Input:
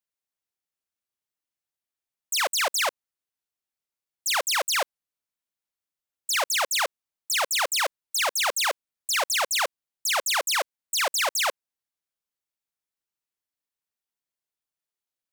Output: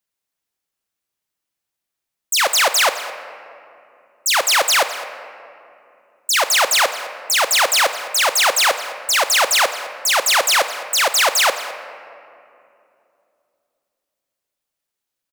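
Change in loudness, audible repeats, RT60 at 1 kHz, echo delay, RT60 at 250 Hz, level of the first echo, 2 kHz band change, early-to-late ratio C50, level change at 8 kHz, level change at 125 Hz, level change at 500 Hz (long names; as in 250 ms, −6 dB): +9.0 dB, 1, 2.4 s, 210 ms, 3.7 s, −16.5 dB, +9.5 dB, 9.5 dB, +9.0 dB, can't be measured, +9.5 dB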